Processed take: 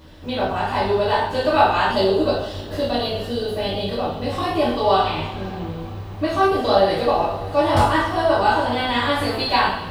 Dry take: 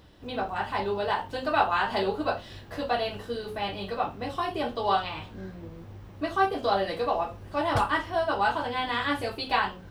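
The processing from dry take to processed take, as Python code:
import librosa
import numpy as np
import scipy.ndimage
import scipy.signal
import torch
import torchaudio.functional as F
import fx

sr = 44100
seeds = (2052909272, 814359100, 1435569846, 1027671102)

y = fx.dynamic_eq(x, sr, hz=1700.0, q=0.82, threshold_db=-37.0, ratio=4.0, max_db=-5)
y = fx.rev_double_slope(y, sr, seeds[0], early_s=0.58, late_s=4.6, knee_db=-20, drr_db=-5.5)
y = fx.spec_box(y, sr, start_s=1.92, length_s=2.41, low_hz=660.0, high_hz=2700.0, gain_db=-6)
y = F.gain(torch.from_numpy(y), 4.0).numpy()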